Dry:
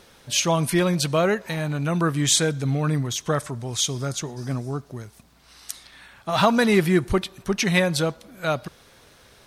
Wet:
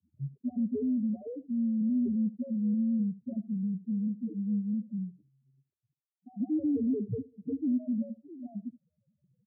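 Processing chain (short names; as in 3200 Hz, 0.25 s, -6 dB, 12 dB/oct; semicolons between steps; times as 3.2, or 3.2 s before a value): tape start at the beginning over 0.46 s; loudest bins only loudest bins 1; in parallel at +2.5 dB: compressor 4:1, threshold -39 dBFS, peak gain reduction 14 dB; on the sum: sample leveller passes 2; inverse Chebyshev low-pass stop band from 1800 Hz, stop band 80 dB; frequency shift +75 Hz; on a send: echo 73 ms -17.5 dB; on the sum: gain -6.5 dB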